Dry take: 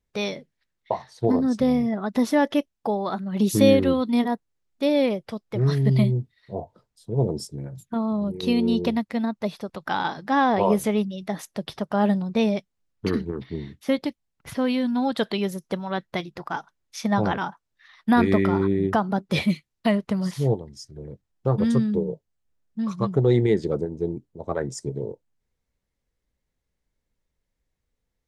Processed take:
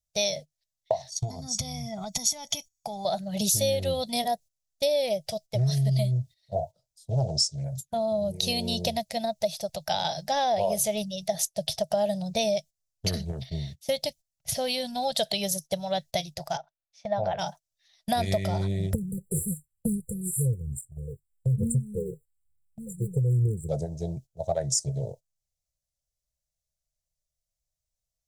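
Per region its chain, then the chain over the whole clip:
1.10–3.05 s: peaking EQ 6.5 kHz +11.5 dB 0.44 oct + compression, threshold -29 dBFS + comb 0.9 ms, depth 83%
7.10–7.64 s: low-pass 7 kHz 24 dB/octave + treble shelf 2.3 kHz +10 dB + loudspeaker Doppler distortion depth 0.49 ms
16.57–17.39 s: low-pass 1.7 kHz + bass shelf 410 Hz -10.5 dB
18.93–23.69 s: phaser 1.1 Hz, delay 2.8 ms, feedback 74% + brick-wall FIR band-stop 520–7200 Hz
whole clip: gate -40 dBFS, range -14 dB; FFT filter 150 Hz 0 dB, 270 Hz -22 dB, 450 Hz -13 dB, 640 Hz +7 dB, 1.1 kHz -20 dB, 5.9 kHz +13 dB, 12 kHz +11 dB; compression 6:1, threshold -26 dBFS; trim +4 dB

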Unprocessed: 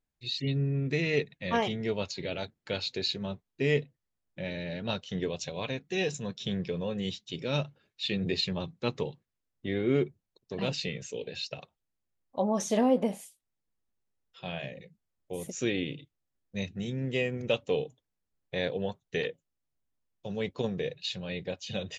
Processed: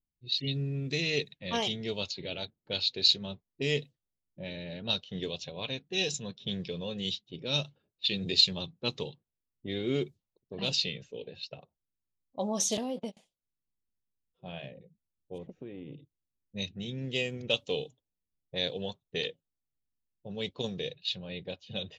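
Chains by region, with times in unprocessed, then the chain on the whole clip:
12.77–13.17 s: gate -30 dBFS, range -28 dB + compression 4:1, threshold -27 dBFS
15.38–15.93 s: low-pass 2.1 kHz + compression 20:1, threshold -33 dBFS
whole clip: level-controlled noise filter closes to 320 Hz, open at -26 dBFS; resonant high shelf 2.6 kHz +10.5 dB, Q 1.5; trim -4 dB

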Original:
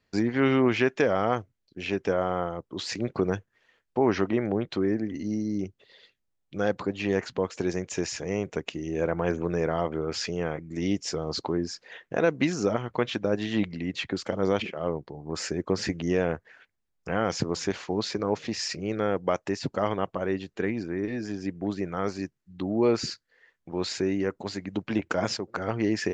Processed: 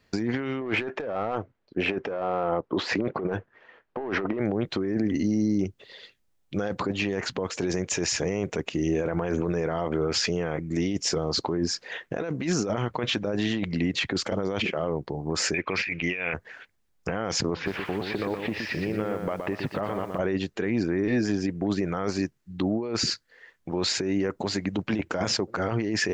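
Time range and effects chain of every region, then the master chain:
0.61–4.40 s: low-pass 1.9 kHz 6 dB/octave + overdrive pedal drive 17 dB, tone 1.1 kHz, clips at -10.5 dBFS
15.54–16.34 s: resonant low-pass 2.4 kHz, resonance Q 9.4 + tilt shelf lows -7 dB
17.54–20.19 s: low-pass 3 kHz 24 dB/octave + compression, threshold -33 dBFS + bit-crushed delay 120 ms, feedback 35%, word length 10-bit, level -5.5 dB
whole clip: compressor with a negative ratio -30 dBFS, ratio -1; peak limiter -21 dBFS; trim +5 dB

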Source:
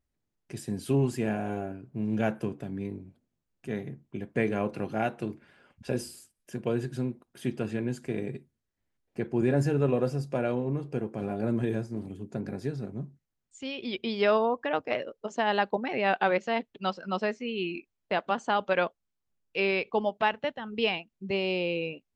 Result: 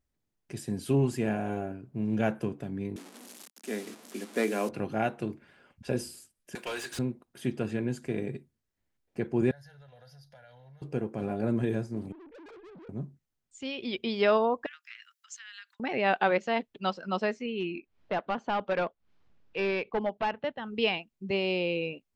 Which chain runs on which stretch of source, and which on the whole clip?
2.96–4.69 s: one-bit delta coder 64 kbps, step -43 dBFS + steep high-pass 210 Hz 48 dB/octave + treble shelf 4 kHz +8.5 dB
6.55–6.99 s: differentiator + overdrive pedal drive 34 dB, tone 2.6 kHz, clips at -24.5 dBFS
9.51–10.82 s: amplifier tone stack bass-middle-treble 10-0-10 + compression 5:1, threshold -48 dBFS + static phaser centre 1.7 kHz, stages 8
12.12–12.89 s: formants replaced by sine waves + compression 4:1, threshold -36 dBFS + valve stage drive 48 dB, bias 0.35
14.66–15.80 s: treble shelf 5 kHz +10.5 dB + compression 10:1, threshold -36 dBFS + steep high-pass 1.4 kHz 48 dB/octave
17.46–20.58 s: overload inside the chain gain 23 dB + upward compressor, threshold -46 dBFS + distance through air 220 m
whole clip: none

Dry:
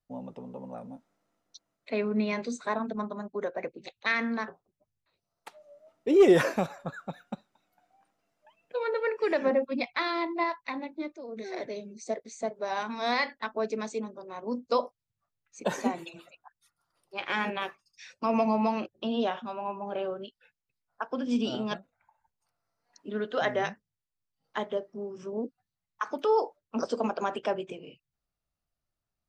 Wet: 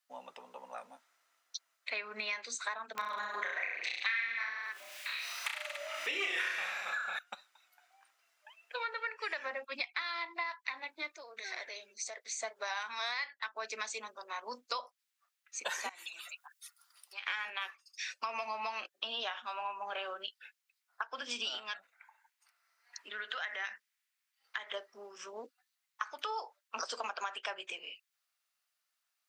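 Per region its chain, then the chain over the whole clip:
2.95–7.19 s: peaking EQ 2.4 kHz +12 dB 1.6 oct + upward compressor, threshold -29 dBFS + reverse bouncing-ball echo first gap 30 ms, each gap 1.1×, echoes 7, each echo -2 dB
11.22–12.37 s: tone controls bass -13 dB, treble -1 dB + compression 2.5:1, threshold -41 dBFS
15.89–17.27 s: tilt EQ +2.5 dB/octave + compression 4:1, threshold -51 dBFS
21.58–24.74 s: peaking EQ 2 kHz +6.5 dB 1 oct + compression 5:1, threshold -37 dBFS
whole clip: Chebyshev high-pass 1.6 kHz, order 2; compression 6:1, threshold -45 dBFS; trim +10 dB

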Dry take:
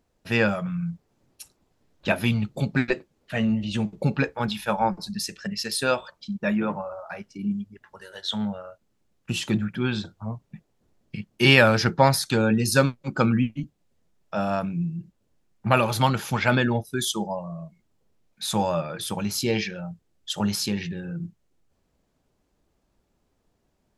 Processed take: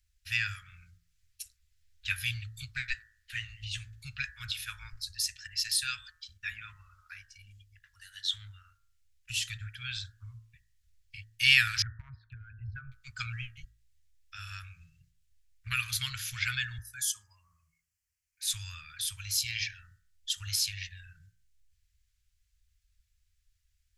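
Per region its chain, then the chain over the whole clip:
11.82–12.92 s: resonances exaggerated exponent 2 + Bessel low-pass 1.2 kHz, order 6 + compression 2.5:1, threshold -21 dBFS
16.78–18.47 s: high-pass 250 Hz 6 dB/octave + peaking EQ 3.7 kHz -15 dB 0.43 oct
whole clip: inverse Chebyshev band-stop 180–810 Hz, stop band 50 dB; tone controls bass +6 dB, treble +4 dB; de-hum 55.31 Hz, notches 35; trim -3.5 dB

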